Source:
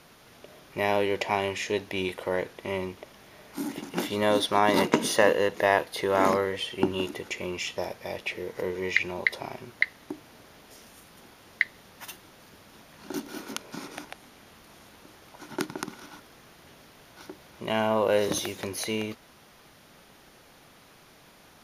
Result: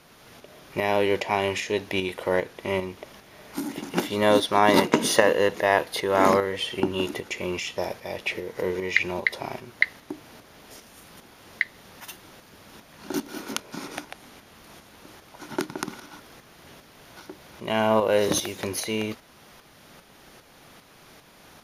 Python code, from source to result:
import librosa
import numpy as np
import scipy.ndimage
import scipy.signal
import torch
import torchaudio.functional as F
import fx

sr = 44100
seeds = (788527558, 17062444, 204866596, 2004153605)

y = fx.tremolo_shape(x, sr, shape='saw_up', hz=2.5, depth_pct=50)
y = F.gain(torch.from_numpy(y), 5.5).numpy()